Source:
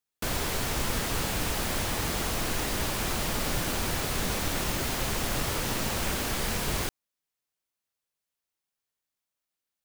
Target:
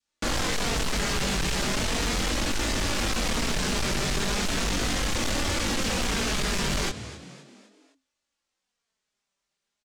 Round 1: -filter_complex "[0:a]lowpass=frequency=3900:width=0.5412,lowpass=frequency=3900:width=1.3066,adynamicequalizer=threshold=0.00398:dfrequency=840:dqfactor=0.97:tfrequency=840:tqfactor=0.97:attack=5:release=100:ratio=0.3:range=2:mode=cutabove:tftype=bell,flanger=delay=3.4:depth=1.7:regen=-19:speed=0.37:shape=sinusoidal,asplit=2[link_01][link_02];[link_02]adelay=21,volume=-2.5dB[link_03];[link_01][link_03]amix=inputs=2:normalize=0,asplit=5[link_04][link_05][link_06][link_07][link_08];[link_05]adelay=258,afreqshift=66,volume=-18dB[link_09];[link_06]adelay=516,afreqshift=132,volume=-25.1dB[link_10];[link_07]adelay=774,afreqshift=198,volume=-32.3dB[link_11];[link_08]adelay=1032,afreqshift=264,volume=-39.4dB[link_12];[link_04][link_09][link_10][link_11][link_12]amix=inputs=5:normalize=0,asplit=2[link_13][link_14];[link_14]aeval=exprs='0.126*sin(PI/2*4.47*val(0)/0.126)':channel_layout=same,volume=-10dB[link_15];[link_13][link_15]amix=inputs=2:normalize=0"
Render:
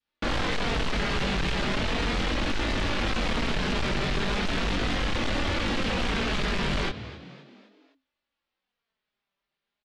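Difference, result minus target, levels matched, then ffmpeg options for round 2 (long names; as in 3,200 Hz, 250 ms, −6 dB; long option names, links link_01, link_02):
8,000 Hz band −12.0 dB
-filter_complex "[0:a]lowpass=frequency=7800:width=0.5412,lowpass=frequency=7800:width=1.3066,adynamicequalizer=threshold=0.00398:dfrequency=840:dqfactor=0.97:tfrequency=840:tqfactor=0.97:attack=5:release=100:ratio=0.3:range=2:mode=cutabove:tftype=bell,flanger=delay=3.4:depth=1.7:regen=-19:speed=0.37:shape=sinusoidal,asplit=2[link_01][link_02];[link_02]adelay=21,volume=-2.5dB[link_03];[link_01][link_03]amix=inputs=2:normalize=0,asplit=5[link_04][link_05][link_06][link_07][link_08];[link_05]adelay=258,afreqshift=66,volume=-18dB[link_09];[link_06]adelay=516,afreqshift=132,volume=-25.1dB[link_10];[link_07]adelay=774,afreqshift=198,volume=-32.3dB[link_11];[link_08]adelay=1032,afreqshift=264,volume=-39.4dB[link_12];[link_04][link_09][link_10][link_11][link_12]amix=inputs=5:normalize=0,asplit=2[link_13][link_14];[link_14]aeval=exprs='0.126*sin(PI/2*4.47*val(0)/0.126)':channel_layout=same,volume=-10dB[link_15];[link_13][link_15]amix=inputs=2:normalize=0"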